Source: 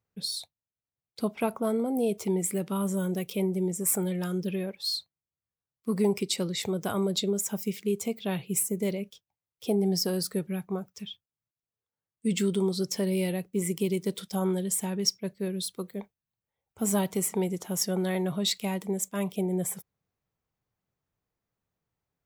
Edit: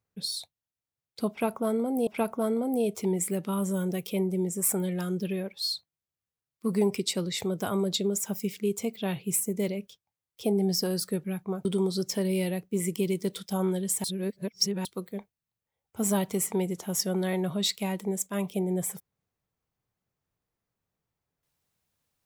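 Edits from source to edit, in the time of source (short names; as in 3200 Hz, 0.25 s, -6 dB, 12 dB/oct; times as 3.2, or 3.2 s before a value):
1.3–2.07 loop, 2 plays
10.88–12.47 cut
14.86–15.67 reverse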